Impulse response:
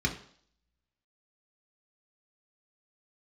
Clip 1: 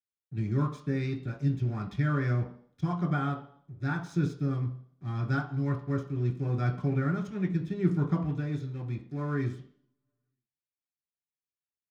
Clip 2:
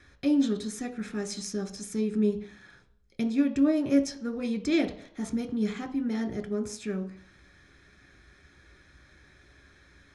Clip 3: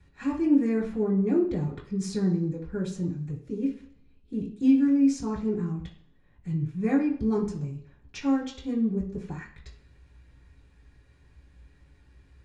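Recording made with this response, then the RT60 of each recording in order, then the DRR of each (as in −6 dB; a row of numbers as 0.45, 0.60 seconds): 1; 0.55, 0.55, 0.55 seconds; 1.0, 5.5, −6.5 decibels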